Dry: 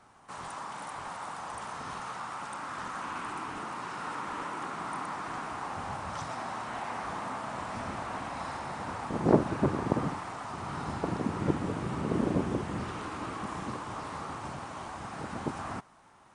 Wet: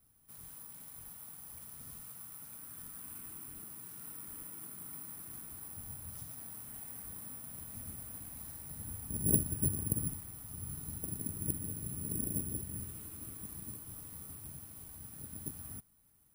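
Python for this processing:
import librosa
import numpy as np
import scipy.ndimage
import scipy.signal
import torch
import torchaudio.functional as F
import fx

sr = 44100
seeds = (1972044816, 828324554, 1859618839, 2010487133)

y = fx.low_shelf(x, sr, hz=150.0, db=7.5, at=(8.7, 10.75))
y = (np.kron(y[::4], np.eye(4)[0]) * 4)[:len(y)]
y = fx.tone_stack(y, sr, knobs='10-0-1')
y = F.gain(torch.from_numpy(y), 5.0).numpy()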